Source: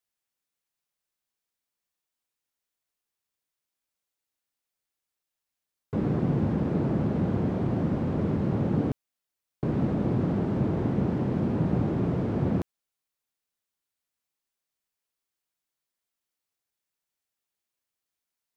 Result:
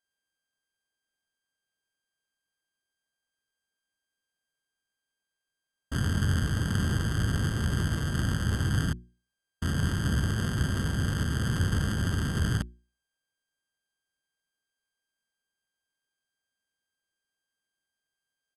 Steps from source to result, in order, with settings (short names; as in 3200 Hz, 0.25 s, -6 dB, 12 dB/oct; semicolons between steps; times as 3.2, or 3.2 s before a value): sample sorter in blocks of 16 samples; pitch shift -9.5 st; notches 60/120/180/240/300/360 Hz